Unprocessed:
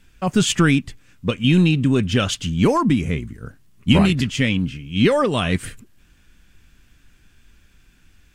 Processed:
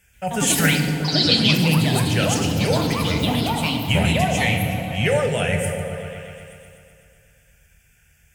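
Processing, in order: high-pass 50 Hz; treble shelf 2.9 kHz +9.5 dB; static phaser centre 1.1 kHz, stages 6; ever faster or slower copies 134 ms, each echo +4 st, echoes 3; 0.79–1.53 s: resonant low-pass 4.5 kHz, resonance Q 6.6; delay with an opening low-pass 125 ms, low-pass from 200 Hz, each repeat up 1 oct, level -3 dB; FDN reverb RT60 1.5 s, low-frequency decay 0.75×, high-frequency decay 0.85×, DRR 4.5 dB; trim -2 dB

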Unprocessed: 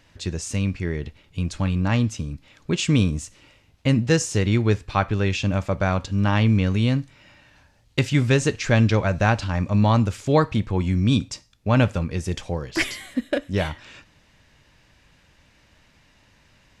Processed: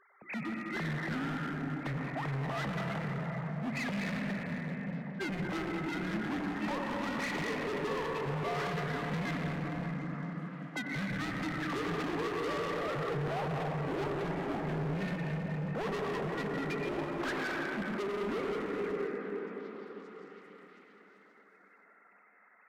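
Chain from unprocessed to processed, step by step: formants replaced by sine waves; bass shelf 390 Hz -9.5 dB; compression 4:1, threshold -29 dBFS, peak gain reduction 12.5 dB; reverberation RT60 3.2 s, pre-delay 62 ms, DRR -0.5 dB; dynamic bell 550 Hz, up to +7 dB, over -47 dBFS, Q 5.2; overload inside the chain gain 33 dB; speed mistake 45 rpm record played at 33 rpm; hum notches 60/120/180/240/300/360/420 Hz; repeats whose band climbs or falls 395 ms, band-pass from 330 Hz, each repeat 0.7 oct, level -6 dB

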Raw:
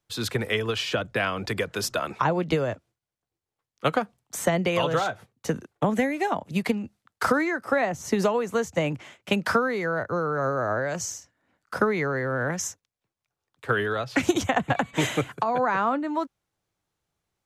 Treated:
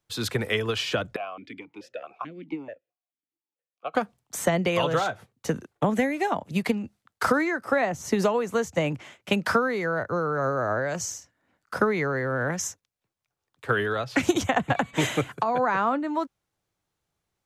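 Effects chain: 1.16–3.95 s: stepped vowel filter 4.6 Hz

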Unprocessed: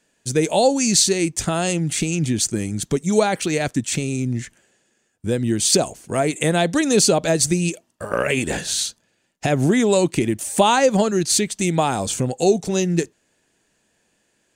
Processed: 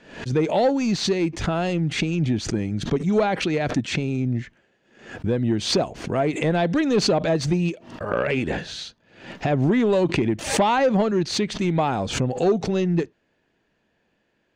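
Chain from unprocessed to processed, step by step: saturation -11.5 dBFS, distortion -16 dB; distance through air 250 m; swell ahead of each attack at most 99 dB/s

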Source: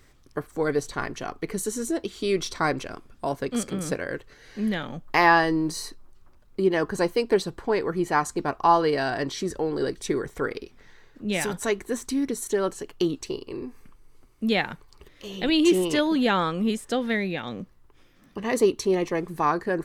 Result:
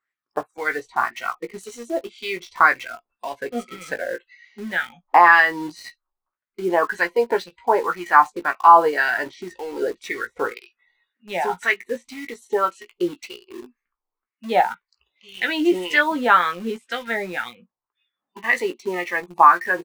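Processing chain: spectral noise reduction 27 dB; wah-wah 1.9 Hz 770–2000 Hz, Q 3; in parallel at -7.5 dB: word length cut 8-bit, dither none; on the sum: doubling 17 ms -7.5 dB; loudness maximiser +12.5 dB; trim -1 dB

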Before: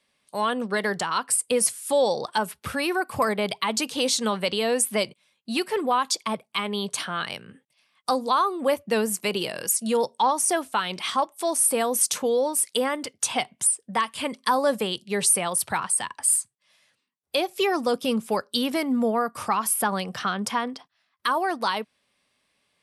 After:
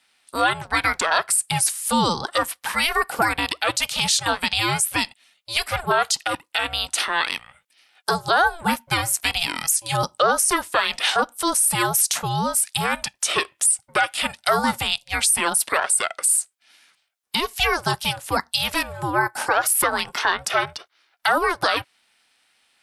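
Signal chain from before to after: high-pass 860 Hz 12 dB/octave; ring modulator 340 Hz; loudness maximiser +18.5 dB; trim -7 dB

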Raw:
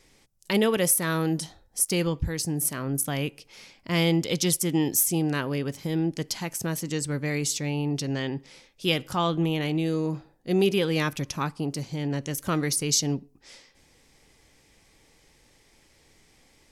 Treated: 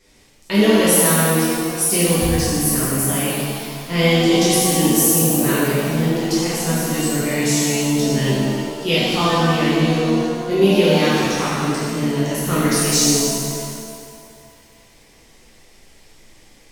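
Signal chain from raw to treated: 5.23–6.15 s: phase dispersion highs, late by 118 ms, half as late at 450 Hz; pitch-shifted reverb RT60 2 s, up +7 st, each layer -8 dB, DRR -10 dB; trim -1.5 dB

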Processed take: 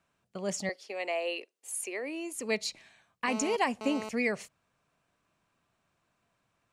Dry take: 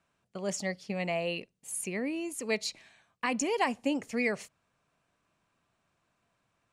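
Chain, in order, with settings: 0.69–2.35 s: steep high-pass 330 Hz 36 dB/octave; 3.28–4.09 s: mobile phone buzz -39 dBFS

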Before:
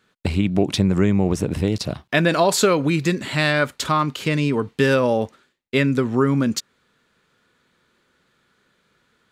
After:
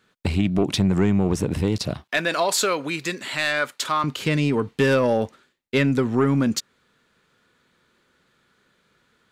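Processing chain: 2.04–4.04 s: high-pass 800 Hz 6 dB/octave; saturation -9.5 dBFS, distortion -18 dB

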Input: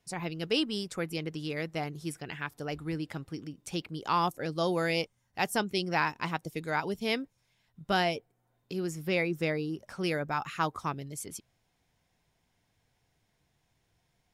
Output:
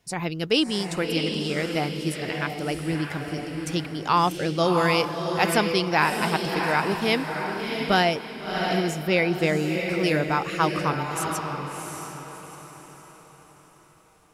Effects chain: echo that smears into a reverb 678 ms, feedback 41%, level -4.5 dB; trim +7 dB

